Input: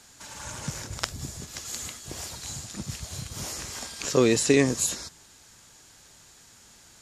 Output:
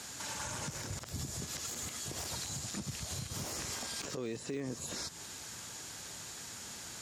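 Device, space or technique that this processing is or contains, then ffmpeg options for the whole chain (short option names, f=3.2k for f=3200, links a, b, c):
podcast mastering chain: -af "highpass=78,deesser=0.8,acompressor=threshold=-44dB:ratio=3,alimiter=level_in=13dB:limit=-24dB:level=0:latency=1:release=89,volume=-13dB,volume=8dB" -ar 48000 -c:a libmp3lame -b:a 112k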